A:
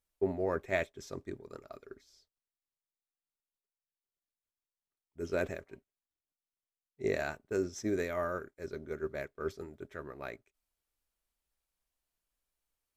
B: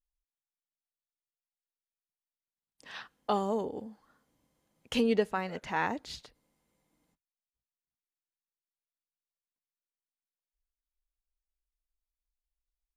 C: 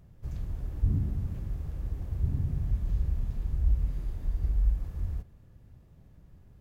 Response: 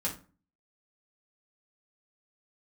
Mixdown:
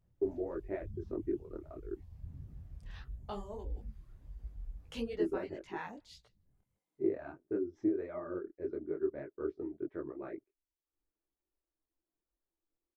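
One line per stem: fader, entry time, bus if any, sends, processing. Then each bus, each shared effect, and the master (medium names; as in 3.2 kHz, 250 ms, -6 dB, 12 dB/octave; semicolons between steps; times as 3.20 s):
-0.5 dB, 0.00 s, no send, no echo send, low-pass 1.4 kHz 12 dB/octave; compression, threshold -36 dBFS, peak gain reduction 10.5 dB; small resonant body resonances 330 Hz, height 18 dB
-8.5 dB, 0.00 s, no send, echo send -23.5 dB, none
-14.0 dB, 0.00 s, no send, echo send -6.5 dB, none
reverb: none
echo: delay 158 ms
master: reverb removal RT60 0.6 s; detune thickener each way 55 cents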